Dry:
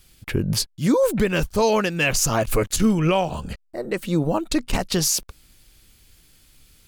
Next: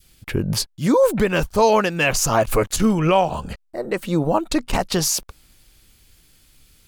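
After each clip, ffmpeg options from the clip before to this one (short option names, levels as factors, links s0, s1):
-af "adynamicequalizer=threshold=0.0178:dfrequency=870:dqfactor=0.82:tfrequency=870:tqfactor=0.82:attack=5:release=100:ratio=0.375:range=3:mode=boostabove:tftype=bell"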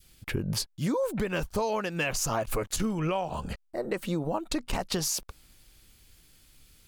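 -af "acompressor=threshold=0.0794:ratio=6,volume=0.631"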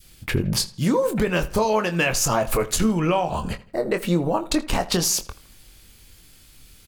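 -filter_complex "[0:a]asplit=2[s0][s1];[s1]adelay=23,volume=0.376[s2];[s0][s2]amix=inputs=2:normalize=0,asplit=2[s3][s4];[s4]adelay=81,lowpass=f=4800:p=1,volume=0.126,asplit=2[s5][s6];[s6]adelay=81,lowpass=f=4800:p=1,volume=0.41,asplit=2[s7][s8];[s8]adelay=81,lowpass=f=4800:p=1,volume=0.41[s9];[s3][s5][s7][s9]amix=inputs=4:normalize=0,volume=2.37"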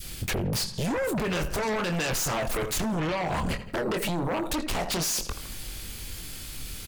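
-af "alimiter=limit=0.168:level=0:latency=1:release=12,acompressor=threshold=0.0224:ratio=4,aeval=exprs='0.0944*sin(PI/2*3.98*val(0)/0.0944)':c=same,volume=0.631"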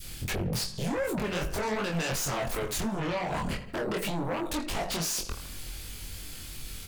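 -af "flanger=delay=20:depth=4.4:speed=2.7"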